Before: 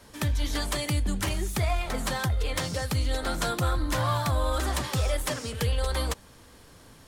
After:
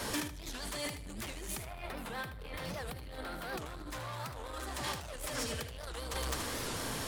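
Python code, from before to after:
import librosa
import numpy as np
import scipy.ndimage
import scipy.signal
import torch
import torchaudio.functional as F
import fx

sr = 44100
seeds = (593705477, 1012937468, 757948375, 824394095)

y = fx.echo_multitap(x, sr, ms=(114, 209), db=(-16.5, -14.0))
y = 10.0 ** (-28.0 / 20.0) * np.tanh(y / 10.0 ** (-28.0 / 20.0))
y = fx.over_compress(y, sr, threshold_db=-43.0, ratio=-1.0)
y = fx.peak_eq(y, sr, hz=6800.0, db=-13.5, octaves=1.0, at=(1.63, 3.59))
y = fx.echo_feedback(y, sr, ms=77, feedback_pct=19, wet_db=-10)
y = np.clip(y, -10.0 ** (-34.5 / 20.0), 10.0 ** (-34.5 / 20.0))
y = fx.low_shelf(y, sr, hz=220.0, db=-7.0)
y = fx.record_warp(y, sr, rpm=78.0, depth_cents=250.0)
y = y * 10.0 ** (5.5 / 20.0)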